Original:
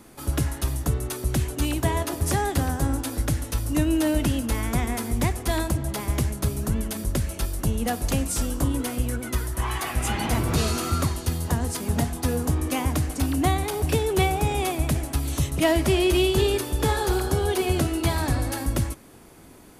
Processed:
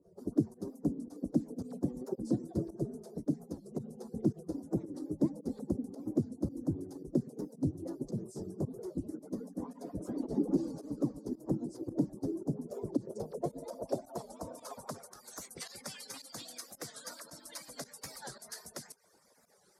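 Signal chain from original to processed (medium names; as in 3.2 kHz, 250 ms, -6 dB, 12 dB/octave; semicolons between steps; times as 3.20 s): harmonic-percussive separation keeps percussive; FFT filter 570 Hz 0 dB, 2.8 kHz -23 dB, 5 kHz +6 dB; in parallel at +2 dB: peak limiter -21 dBFS, peak gain reduction 9 dB; on the sum: volume shaper 111 bpm, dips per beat 1, -16 dB, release 84 ms; band-pass sweep 300 Hz -> 1.9 kHz, 12.75–15.63 s; warped record 45 rpm, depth 160 cents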